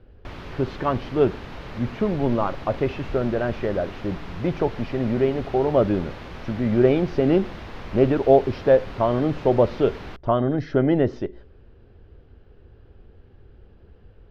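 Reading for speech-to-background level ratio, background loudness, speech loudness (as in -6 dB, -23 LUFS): 16.0 dB, -38.5 LUFS, -22.5 LUFS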